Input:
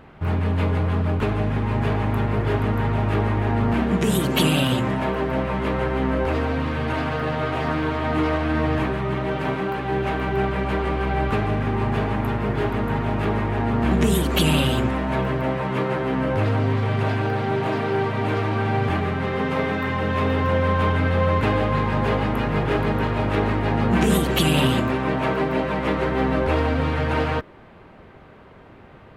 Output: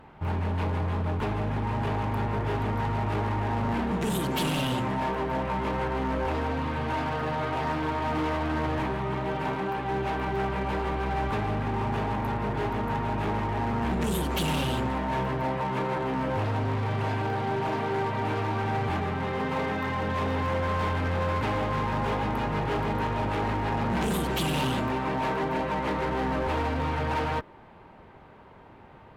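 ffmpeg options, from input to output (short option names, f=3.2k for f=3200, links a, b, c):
-af "equalizer=f=890:t=o:w=0.29:g=9,asoftclip=type=hard:threshold=-18.5dB,volume=-5.5dB" -ar 48000 -c:a libopus -b:a 256k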